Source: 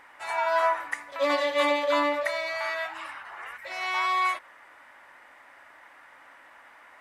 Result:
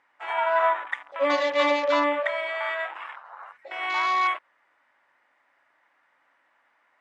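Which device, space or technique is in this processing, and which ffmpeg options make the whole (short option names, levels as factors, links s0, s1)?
over-cleaned archive recording: -af "highpass=100,lowpass=6800,afwtdn=0.0158,volume=1.26"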